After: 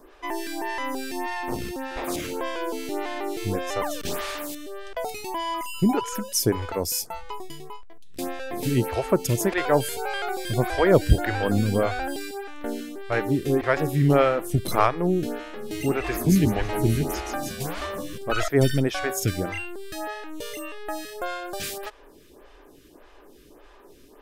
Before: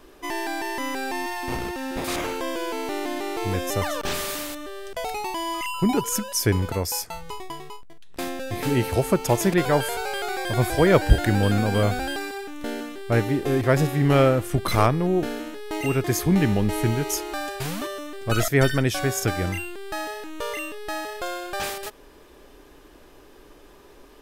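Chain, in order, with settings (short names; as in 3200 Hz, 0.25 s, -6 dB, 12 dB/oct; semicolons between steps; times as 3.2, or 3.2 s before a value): 15.37–18.18 frequency-shifting echo 0.164 s, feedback 46%, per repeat -85 Hz, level -6 dB; photocell phaser 1.7 Hz; gain +1.5 dB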